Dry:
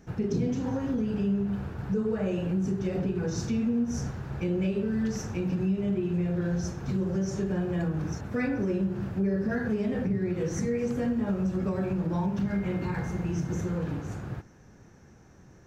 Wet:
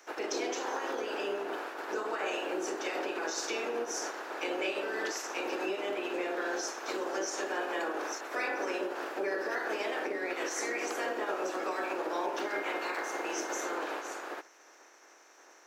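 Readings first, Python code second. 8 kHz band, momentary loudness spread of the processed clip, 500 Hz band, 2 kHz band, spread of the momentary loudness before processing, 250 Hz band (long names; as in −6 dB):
can't be measured, 3 LU, −1.5 dB, +7.0 dB, 4 LU, −13.5 dB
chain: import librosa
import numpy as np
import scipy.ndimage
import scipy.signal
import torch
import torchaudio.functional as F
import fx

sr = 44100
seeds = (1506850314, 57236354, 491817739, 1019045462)

y = fx.spec_clip(x, sr, under_db=24)
y = scipy.signal.sosfilt(scipy.signal.cheby1(4, 1.0, 320.0, 'highpass', fs=sr, output='sos'), y)
y = F.gain(torch.from_numpy(y), -3.0).numpy()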